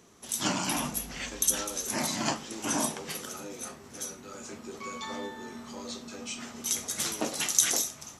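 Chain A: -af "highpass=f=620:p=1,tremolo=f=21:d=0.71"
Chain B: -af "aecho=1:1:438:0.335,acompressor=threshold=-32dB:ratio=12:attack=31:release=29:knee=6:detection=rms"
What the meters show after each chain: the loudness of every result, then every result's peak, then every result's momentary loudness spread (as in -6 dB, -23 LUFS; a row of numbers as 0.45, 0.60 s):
-34.0, -34.0 LUFS; -10.0, -11.5 dBFS; 17, 9 LU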